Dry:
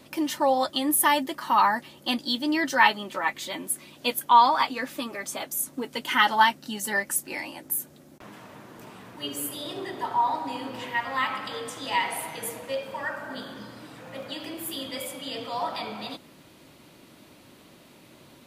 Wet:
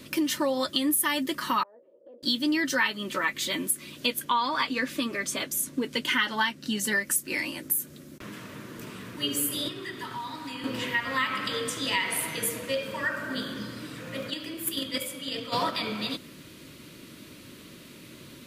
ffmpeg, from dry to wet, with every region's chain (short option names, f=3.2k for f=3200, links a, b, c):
-filter_complex "[0:a]asettb=1/sr,asplit=3[a][b][c];[a]atrim=end=1.634[d];[b]atrim=start=1.63:end=2.23,asetpts=PTS-STARTPTS,afade=t=in:d=0.004:c=qsin,afade=t=out:st=0.596:d=0.004:c=qsin,asuperpass=centerf=520:order=4:qfactor=3,acompressor=threshold=-48dB:ratio=5:attack=3.2:release=140:knee=1:detection=peak[e];[c]atrim=start=2.226[f];[d][e]acrossfade=d=0.004:c1=hsin:c2=qsin[g];[g][f]acrossfade=d=0.004:c1=qsin:c2=hsin,asettb=1/sr,asplit=3[h][i][j];[h]atrim=end=4.064[k];[i]atrim=start=4.06:end=6.92,asetpts=PTS-STARTPTS,afade=t=in:d=0.004:c=qsin,afade=t=out:st=2.856:d=0.004:c=qsin,highshelf=f=10k:g=-10,bandreject=f=1.3k:w=19[l];[j]atrim=start=6.916[m];[k][l]acrossfade=d=0.004:c1=hsin:c2=qsin[n];[n][m]acrossfade=d=0.004:c1=qsin:c2=hsin,asettb=1/sr,asplit=3[o][p][q];[o]atrim=end=9.684[r];[p]atrim=start=9.68:end=10.64,asetpts=PTS-STARTPTS,afade=t=in:d=0.004:c=qsin,afade=t=out:st=0.956:d=0.004:c=qsin,equalizer=f=600:t=o:w=1.5:g=-10,acrossover=split=590|2300[s][t][u];[s]acompressor=threshold=-45dB:ratio=4[v];[t]acompressor=threshold=-35dB:ratio=4[w];[u]acompressor=threshold=-50dB:ratio=4[x];[v][w][x]amix=inputs=3:normalize=0[y];[q]atrim=start=10.636[z];[r][y]acrossfade=d=0.004:c1=hsin:c2=qsin[aa];[aa][z]acrossfade=d=0.004:c1=qsin:c2=hsin,asettb=1/sr,asplit=3[ab][ac][ad];[ab]atrim=end=14.304[ae];[ac]atrim=start=14.3:end=15.71,asetpts=PTS-STARTPTS,afade=t=in:d=0.004:c=qsin,afade=t=out:st=1.406:d=0.004:c=qsin,agate=range=-12dB:threshold=-33dB:ratio=16:release=100:detection=peak,acontrast=65[af];[ad]atrim=start=15.706[ag];[ae][af]acrossfade=d=0.004:c1=hsin:c2=qsin[ah];[ah][ag]acrossfade=d=0.004:c1=qsin:c2=hsin,equalizer=f=780:w=2:g=-14.5,bandreject=f=830:w=22,acompressor=threshold=-30dB:ratio=4,volume=6.5dB"